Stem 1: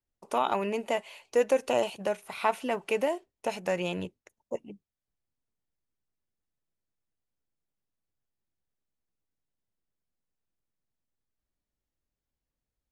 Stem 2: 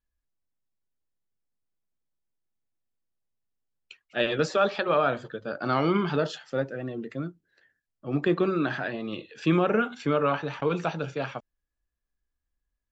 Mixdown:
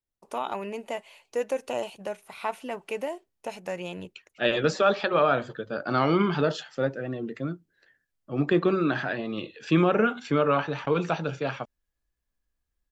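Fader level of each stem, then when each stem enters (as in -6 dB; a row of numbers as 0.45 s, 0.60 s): -4.0 dB, +1.5 dB; 0.00 s, 0.25 s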